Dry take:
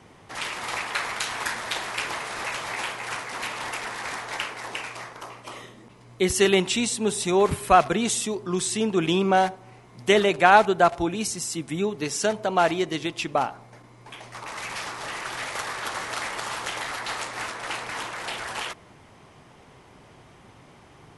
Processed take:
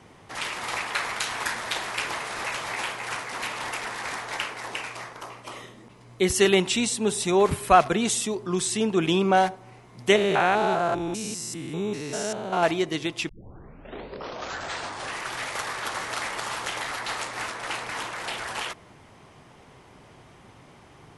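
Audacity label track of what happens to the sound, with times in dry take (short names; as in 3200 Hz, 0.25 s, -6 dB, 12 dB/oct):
10.160000	12.630000	stepped spectrum every 0.2 s
13.290000	13.290000	tape start 1.90 s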